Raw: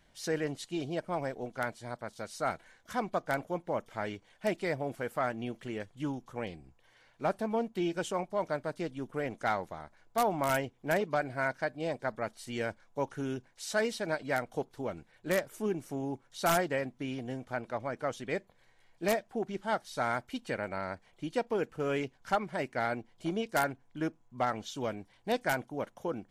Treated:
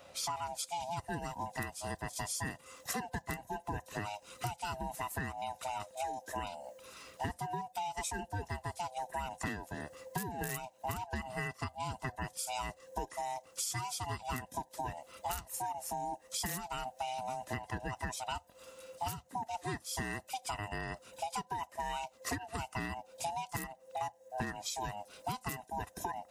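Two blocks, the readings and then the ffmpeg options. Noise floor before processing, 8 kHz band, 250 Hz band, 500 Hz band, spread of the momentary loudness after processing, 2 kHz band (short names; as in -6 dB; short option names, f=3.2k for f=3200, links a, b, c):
-66 dBFS, +5.0 dB, -9.0 dB, -11.5 dB, 4 LU, -6.0 dB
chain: -filter_complex "[0:a]afftfilt=real='real(if(lt(b,1008),b+24*(1-2*mod(floor(b/24),2)),b),0)':imag='imag(if(lt(b,1008),b+24*(1-2*mod(floor(b/24),2)),b),0)':win_size=2048:overlap=0.75,highpass=52,acrossover=split=6000[a][b];[b]dynaudnorm=f=280:g=3:m=13.5dB[c];[a][c]amix=inputs=2:normalize=0,alimiter=limit=-17dB:level=0:latency=1:release=432,acompressor=threshold=-45dB:ratio=10,volume=9.5dB"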